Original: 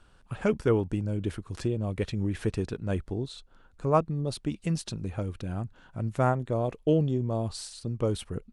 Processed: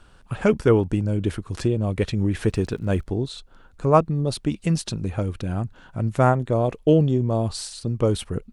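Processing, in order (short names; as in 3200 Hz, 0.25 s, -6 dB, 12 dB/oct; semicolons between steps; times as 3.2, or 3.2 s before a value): 2.32–3.02 crackle 37/s -> 190/s -50 dBFS; gain +7 dB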